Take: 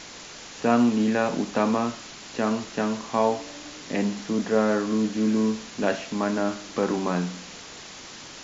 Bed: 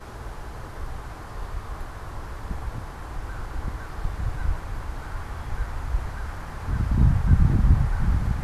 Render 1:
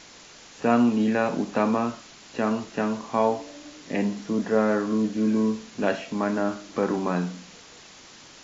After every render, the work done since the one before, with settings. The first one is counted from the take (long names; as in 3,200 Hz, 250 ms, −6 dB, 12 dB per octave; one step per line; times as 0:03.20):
noise reduction from a noise print 6 dB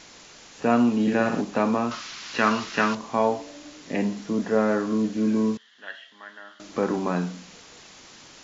0:01.01–0:01.41: flutter between parallel walls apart 10.5 metres, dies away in 0.66 s
0:01.91–0:02.95: flat-topped bell 2,500 Hz +11 dB 2.9 octaves
0:05.57–0:06.60: pair of resonant band-passes 2,400 Hz, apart 0.79 octaves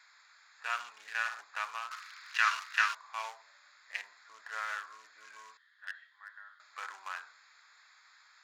adaptive Wiener filter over 15 samples
high-pass filter 1,400 Hz 24 dB per octave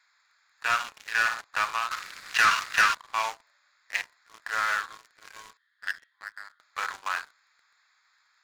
leveller curve on the samples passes 3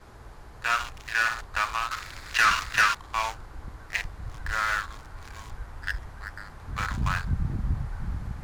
mix in bed −10 dB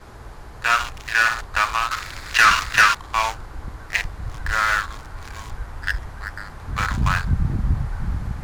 level +7 dB